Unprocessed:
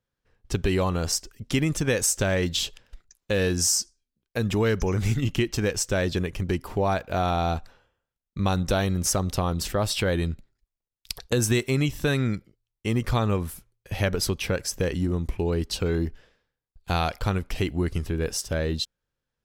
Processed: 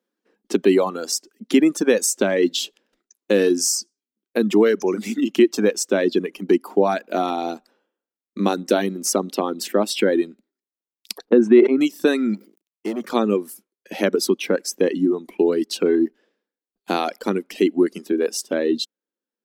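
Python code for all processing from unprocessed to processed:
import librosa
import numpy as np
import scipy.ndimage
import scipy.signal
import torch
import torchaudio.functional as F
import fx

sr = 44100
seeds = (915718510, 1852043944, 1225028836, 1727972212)

y = fx.chain(x, sr, fx.lowpass(hz=1700.0, slope=12),
    fx.low_shelf(hz=200.0, db=5.0),
    fx.sustainer(db_per_s=35.0), at=(11.25, 11.81))
y = fx.chain(y, sr, fx.law_mismatch(coded='A'),
    fx.overload_stage(gain_db=29.5),
    fx.sustainer(db_per_s=130.0), at=(12.34, 13.1))
y = scipy.signal.sosfilt(scipy.signal.ellip(4, 1.0, 40, 200.0, 'highpass', fs=sr, output='sos'), y)
y = fx.dereverb_blind(y, sr, rt60_s=1.6)
y = fx.peak_eq(y, sr, hz=320.0, db=11.0, octaves=1.1)
y = y * librosa.db_to_amplitude(3.5)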